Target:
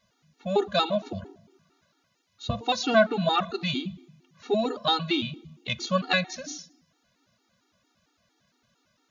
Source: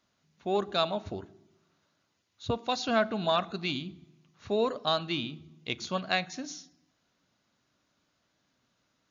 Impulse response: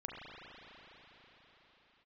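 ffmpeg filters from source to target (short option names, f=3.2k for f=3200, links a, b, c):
-filter_complex "[0:a]asettb=1/sr,asplit=3[a][b][c];[a]atrim=end=1.104[d];[b]atrim=start=1.1:end=2.63,asetpts=PTS-STARTPTS,afade=t=in:d=0.004:c=qsin,afade=t=out:st=1.526:d=0.004:c=qsin,bandreject=f=56.72:t=h:w=4,bandreject=f=113.44:t=h:w=4,bandreject=f=170.16:t=h:w=4,bandreject=f=226.88:t=h:w=4,bandreject=f=283.6:t=h:w=4,bandreject=f=340.32:t=h:w=4,bandreject=f=397.04:t=h:w=4,bandreject=f=453.76:t=h:w=4,bandreject=f=510.48:t=h:w=4,bandreject=f=567.2:t=h:w=4,bandreject=f=623.92:t=h:w=4,bandreject=f=680.64:t=h:w=4,bandreject=f=737.36:t=h:w=4,bandreject=f=794.08:t=h:w=4,bandreject=f=850.8:t=h:w=4,bandreject=f=907.52:t=h:w=4,bandreject=f=964.24:t=h:w=4,bandreject=f=1.02096k:t=h:w=4,bandreject=f=1.07768k:t=h:w=4,bandreject=f=1.1344k:t=h:w=4[e];[c]atrim=start=2.626[f];[d][e]acrossfade=d=0.004:c1=hsin:c2=qsin[g];[g][f]acrossfade=d=0.004:c1=qsin:c2=hsin,afftfilt=real='re*gt(sin(2*PI*4.4*pts/sr)*(1-2*mod(floor(b*sr/1024/240),2)),0)':imag='im*gt(sin(2*PI*4.4*pts/sr)*(1-2*mod(floor(b*sr/1024/240),2)),0)':win_size=1024:overlap=0.75,volume=8dB"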